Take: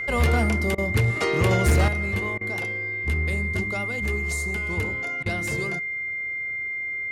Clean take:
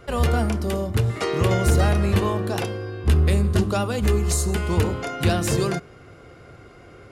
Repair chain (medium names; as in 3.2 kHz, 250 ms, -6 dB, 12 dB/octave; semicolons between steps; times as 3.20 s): clip repair -14 dBFS; band-stop 2.1 kHz, Q 30; interpolate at 0.75/2.38/5.23 s, 29 ms; trim 0 dB, from 1.88 s +8.5 dB